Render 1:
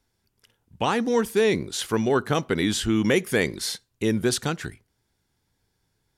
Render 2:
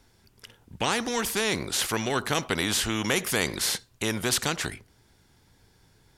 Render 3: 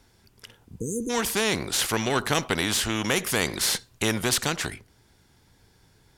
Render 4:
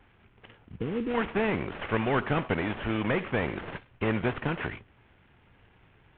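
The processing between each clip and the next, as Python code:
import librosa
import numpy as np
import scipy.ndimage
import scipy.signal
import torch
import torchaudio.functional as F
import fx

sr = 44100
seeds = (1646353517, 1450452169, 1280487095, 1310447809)

y1 = fx.high_shelf(x, sr, hz=9100.0, db=-5.0)
y1 = fx.spectral_comp(y1, sr, ratio=2.0)
y2 = fx.rider(y1, sr, range_db=10, speed_s=0.5)
y2 = fx.cheby_harmonics(y2, sr, harmonics=(8,), levels_db=(-28,), full_scale_db=-9.0)
y2 = fx.spec_repair(y2, sr, seeds[0], start_s=0.74, length_s=0.33, low_hz=500.0, high_hz=6100.0, source='before')
y2 = y2 * 10.0 ** (2.0 / 20.0)
y3 = fx.cvsd(y2, sr, bps=16000)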